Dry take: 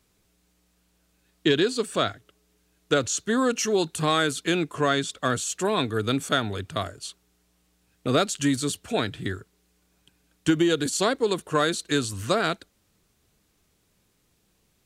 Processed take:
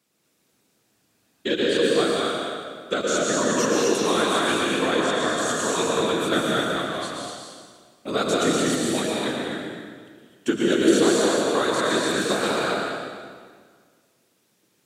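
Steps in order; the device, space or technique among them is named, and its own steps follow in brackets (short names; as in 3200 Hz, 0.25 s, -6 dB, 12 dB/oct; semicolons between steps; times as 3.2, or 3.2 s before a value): non-linear reverb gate 0.28 s rising, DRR 0.5 dB; whispering ghost (whisperiser; HPF 210 Hz 12 dB/oct; reverb RT60 1.8 s, pre-delay 0.107 s, DRR -0.5 dB); gain -3 dB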